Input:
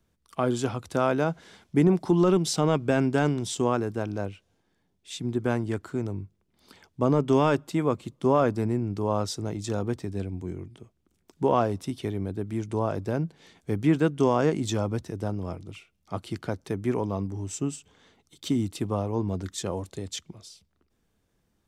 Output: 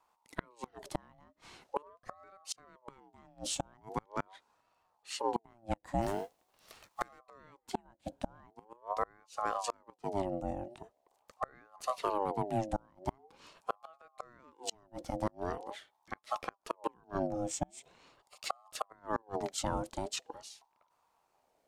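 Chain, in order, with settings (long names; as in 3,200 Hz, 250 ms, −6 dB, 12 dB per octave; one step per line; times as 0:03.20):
0:06.01–0:07.18: spectral envelope flattened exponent 0.6
gate with flip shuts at −18 dBFS, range −34 dB
ring modulator whose carrier an LFO sweeps 690 Hz, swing 40%, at 0.43 Hz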